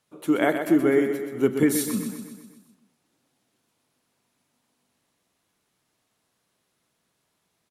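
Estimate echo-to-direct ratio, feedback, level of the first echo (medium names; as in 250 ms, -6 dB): -6.5 dB, 56%, -8.0 dB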